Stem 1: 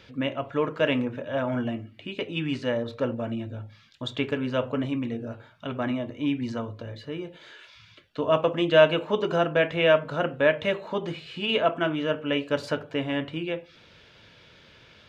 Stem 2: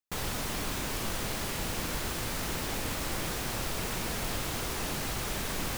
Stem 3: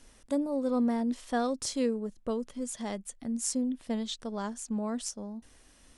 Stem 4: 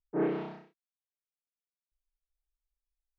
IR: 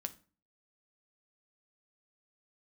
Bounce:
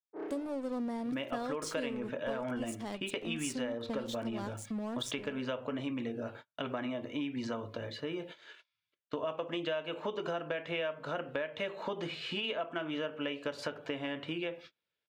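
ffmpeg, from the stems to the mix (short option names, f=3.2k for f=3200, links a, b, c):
-filter_complex "[0:a]agate=range=-37dB:threshold=-46dB:ratio=16:detection=peak,adelay=950,volume=2dB[a];[2:a]aeval=exprs='sgn(val(0))*max(abs(val(0))-0.00631,0)':c=same,volume=-4.5dB,asplit=2[b][c];[c]volume=-7dB[d];[3:a]highpass=f=270:w=0.5412,highpass=f=270:w=1.3066,adynamicsmooth=sensitivity=5.5:basefreq=1.8k,volume=-13.5dB,asplit=2[e][f];[f]volume=-3.5dB[g];[a][e]amix=inputs=2:normalize=0,highpass=f=300:p=1,acompressor=threshold=-32dB:ratio=2,volume=0dB[h];[4:a]atrim=start_sample=2205[i];[d][g]amix=inputs=2:normalize=0[j];[j][i]afir=irnorm=-1:irlink=0[k];[b][h][k]amix=inputs=3:normalize=0,acompressor=threshold=-33dB:ratio=4"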